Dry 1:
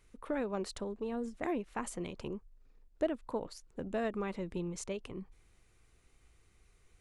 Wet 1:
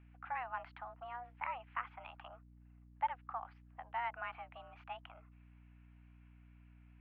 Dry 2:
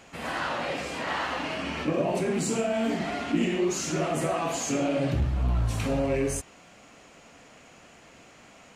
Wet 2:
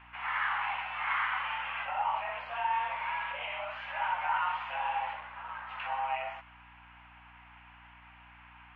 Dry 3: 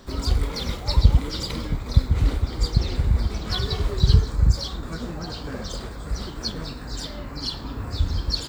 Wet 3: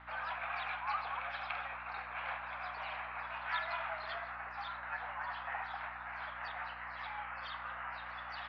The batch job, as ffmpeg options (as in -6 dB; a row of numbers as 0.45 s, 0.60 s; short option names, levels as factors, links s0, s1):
-af "highpass=f=590:t=q:w=0.5412,highpass=f=590:t=q:w=1.307,lowpass=f=2500:t=q:w=0.5176,lowpass=f=2500:t=q:w=0.7071,lowpass=f=2500:t=q:w=1.932,afreqshift=250,aeval=exprs='val(0)+0.00112*(sin(2*PI*60*n/s)+sin(2*PI*2*60*n/s)/2+sin(2*PI*3*60*n/s)/3+sin(2*PI*4*60*n/s)/4+sin(2*PI*5*60*n/s)/5)':c=same"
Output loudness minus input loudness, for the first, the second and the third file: -5.5 LU, -5.5 LU, -15.5 LU